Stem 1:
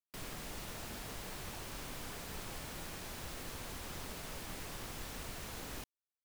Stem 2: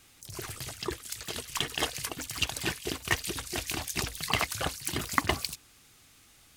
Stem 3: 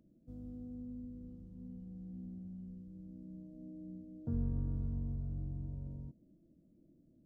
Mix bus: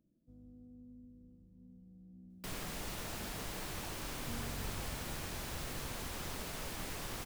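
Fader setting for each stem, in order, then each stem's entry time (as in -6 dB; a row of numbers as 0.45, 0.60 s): +2.5 dB, off, -9.5 dB; 2.30 s, off, 0.00 s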